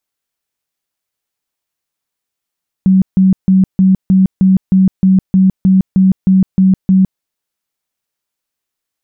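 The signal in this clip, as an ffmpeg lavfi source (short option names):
-f lavfi -i "aevalsrc='0.562*sin(2*PI*189*mod(t,0.31))*lt(mod(t,0.31),30/189)':d=4.34:s=44100"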